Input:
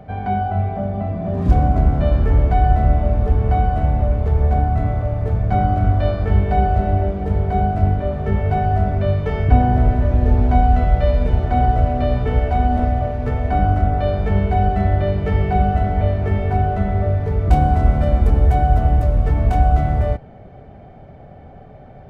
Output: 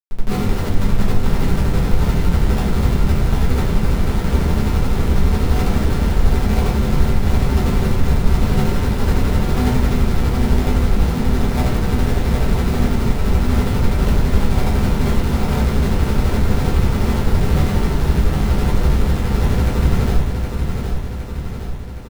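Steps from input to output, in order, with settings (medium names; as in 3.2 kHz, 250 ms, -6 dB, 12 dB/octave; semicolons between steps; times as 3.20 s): median filter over 9 samples; Schmitt trigger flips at -18 dBFS; tremolo 12 Hz, depth 49%; on a send: feedback delay 765 ms, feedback 59%, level -6 dB; on the sum: simulated room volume 33 m³, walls mixed, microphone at 1.1 m; trim -8 dB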